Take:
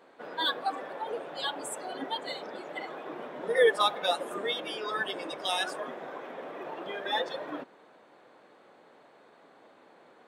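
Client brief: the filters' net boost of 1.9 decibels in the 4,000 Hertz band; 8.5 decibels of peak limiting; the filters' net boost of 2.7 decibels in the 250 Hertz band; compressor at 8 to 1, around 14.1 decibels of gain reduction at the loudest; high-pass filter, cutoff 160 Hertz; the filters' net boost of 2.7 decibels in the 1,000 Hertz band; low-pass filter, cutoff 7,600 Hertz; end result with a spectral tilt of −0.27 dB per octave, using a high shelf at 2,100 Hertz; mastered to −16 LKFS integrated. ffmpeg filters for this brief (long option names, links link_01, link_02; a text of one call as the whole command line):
ffmpeg -i in.wav -af "highpass=160,lowpass=7600,equalizer=frequency=250:width_type=o:gain=4,equalizer=frequency=1000:width_type=o:gain=4,highshelf=frequency=2100:gain=-4.5,equalizer=frequency=4000:width_type=o:gain=6,acompressor=threshold=-31dB:ratio=8,volume=22dB,alimiter=limit=-6dB:level=0:latency=1" out.wav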